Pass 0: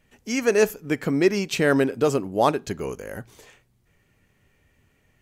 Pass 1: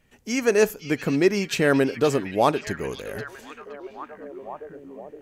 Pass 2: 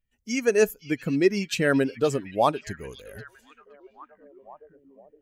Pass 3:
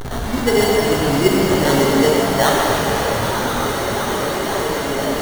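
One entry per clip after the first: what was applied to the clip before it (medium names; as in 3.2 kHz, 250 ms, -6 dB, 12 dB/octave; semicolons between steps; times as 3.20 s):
repeats whose band climbs or falls 518 ms, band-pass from 3.5 kHz, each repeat -0.7 oct, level -6.5 dB
expander on every frequency bin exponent 1.5
one-bit delta coder 64 kbps, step -22.5 dBFS; sample-rate reducer 2.5 kHz, jitter 0%; pitch-shifted reverb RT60 3.4 s, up +7 st, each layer -8 dB, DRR -3.5 dB; trim +2.5 dB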